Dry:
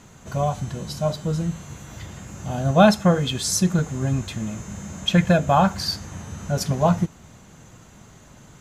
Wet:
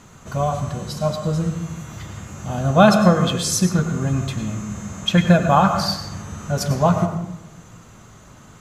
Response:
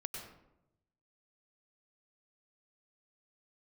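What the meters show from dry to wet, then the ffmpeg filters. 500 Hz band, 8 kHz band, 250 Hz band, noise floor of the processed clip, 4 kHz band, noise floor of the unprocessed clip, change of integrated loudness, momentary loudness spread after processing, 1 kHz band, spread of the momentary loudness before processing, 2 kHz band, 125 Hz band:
+2.5 dB, +1.5 dB, +3.0 dB, -45 dBFS, +2.0 dB, -49 dBFS, +2.5 dB, 18 LU, +3.5 dB, 19 LU, +3.0 dB, +2.5 dB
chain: -filter_complex "[0:a]asplit=2[a][b];[b]equalizer=f=1.2k:t=o:w=0.46:g=8.5[c];[1:a]atrim=start_sample=2205[d];[c][d]afir=irnorm=-1:irlink=0,volume=2dB[e];[a][e]amix=inputs=2:normalize=0,volume=-4dB"

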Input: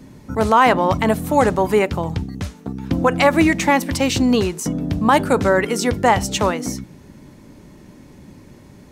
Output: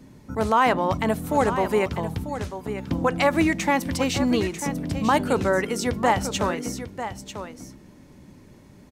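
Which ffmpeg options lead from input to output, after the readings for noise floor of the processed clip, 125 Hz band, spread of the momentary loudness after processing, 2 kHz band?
-50 dBFS, -5.5 dB, 12 LU, -5.5 dB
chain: -af "aecho=1:1:944:0.299,volume=-6dB"

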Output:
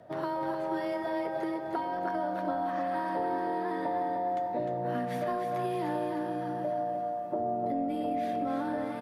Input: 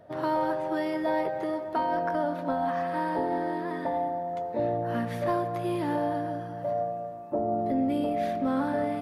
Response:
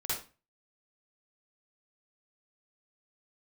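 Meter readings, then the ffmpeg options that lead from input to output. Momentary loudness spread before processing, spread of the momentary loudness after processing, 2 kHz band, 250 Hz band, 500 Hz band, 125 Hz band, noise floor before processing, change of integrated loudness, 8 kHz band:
5 LU, 2 LU, -3.5 dB, -4.0 dB, -3.5 dB, -5.5 dB, -37 dBFS, -3.0 dB, n/a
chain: -af "acompressor=threshold=-30dB:ratio=6,afreqshift=14,aecho=1:1:304|608|912|1216|1520|1824:0.501|0.246|0.12|0.059|0.0289|0.0142"

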